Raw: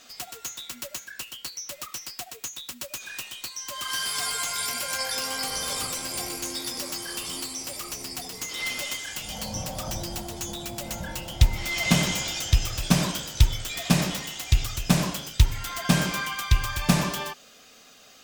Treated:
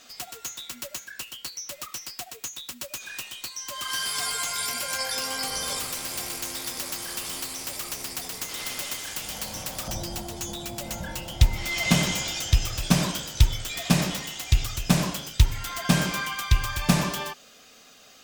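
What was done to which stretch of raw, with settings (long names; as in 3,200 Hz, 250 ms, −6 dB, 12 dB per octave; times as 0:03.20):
0:05.79–0:09.88: every bin compressed towards the loudest bin 2 to 1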